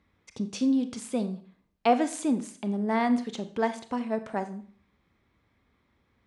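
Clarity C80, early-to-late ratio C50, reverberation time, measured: 17.0 dB, 13.5 dB, 0.45 s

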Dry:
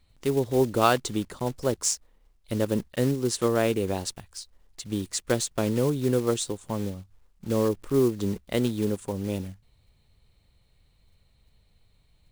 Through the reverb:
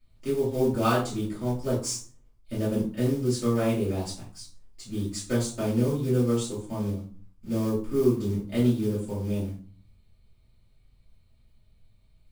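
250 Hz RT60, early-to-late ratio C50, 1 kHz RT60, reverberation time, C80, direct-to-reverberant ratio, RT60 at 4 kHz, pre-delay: 0.65 s, 6.5 dB, 0.40 s, 0.45 s, 11.5 dB, -10.0 dB, 0.30 s, 3 ms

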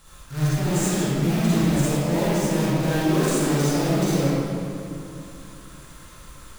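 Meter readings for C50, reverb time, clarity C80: -7.5 dB, 2.6 s, -4.0 dB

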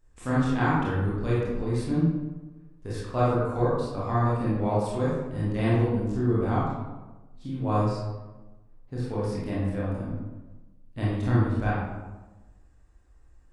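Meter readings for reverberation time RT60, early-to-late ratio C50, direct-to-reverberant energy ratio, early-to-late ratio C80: 1.2 s, -1.5 dB, -8.5 dB, 2.0 dB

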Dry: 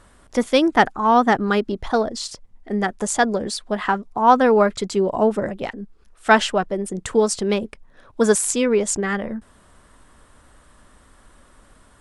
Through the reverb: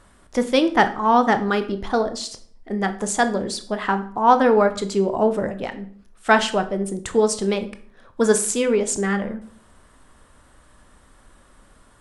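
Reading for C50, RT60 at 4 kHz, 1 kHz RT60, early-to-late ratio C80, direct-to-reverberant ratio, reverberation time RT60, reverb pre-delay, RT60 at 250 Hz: 14.0 dB, 0.40 s, 0.50 s, 18.0 dB, 9.0 dB, 0.55 s, 17 ms, 0.65 s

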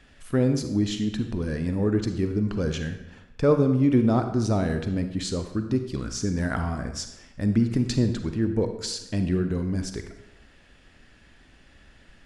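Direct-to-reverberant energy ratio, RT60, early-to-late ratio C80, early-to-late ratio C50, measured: 7.0 dB, 1.0 s, 10.5 dB, 8.0 dB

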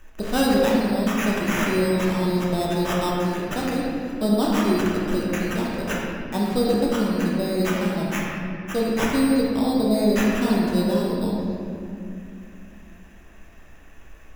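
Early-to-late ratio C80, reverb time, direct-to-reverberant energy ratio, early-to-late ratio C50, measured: 0.5 dB, 2.6 s, -5.0 dB, -1.0 dB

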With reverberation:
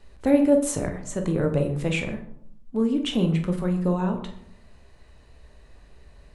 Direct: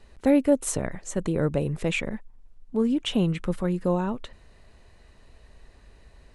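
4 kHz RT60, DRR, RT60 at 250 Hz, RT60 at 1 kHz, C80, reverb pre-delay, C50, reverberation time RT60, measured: 0.40 s, 4.0 dB, 0.95 s, 0.65 s, 12.0 dB, 18 ms, 9.5 dB, 0.70 s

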